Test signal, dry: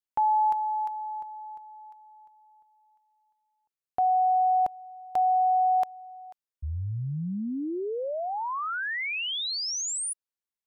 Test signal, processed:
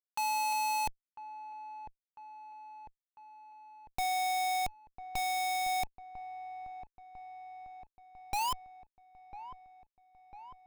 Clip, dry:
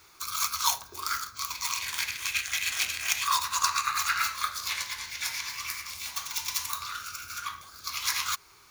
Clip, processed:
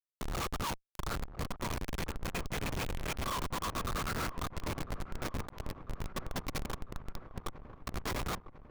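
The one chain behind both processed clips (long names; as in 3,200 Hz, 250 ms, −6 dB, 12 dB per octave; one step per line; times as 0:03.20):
high-pass filter 320 Hz 6 dB per octave
low shelf with overshoot 650 Hz −8.5 dB, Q 3
in parallel at −0.5 dB: downward compressor 10 to 1, threshold −36 dBFS
on the sum: comparator with hysteresis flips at −21.5 dBFS
on a send: delay with a low-pass on its return 999 ms, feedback 62%, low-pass 1,400 Hz, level −12.5 dB
on the sum: level −6 dB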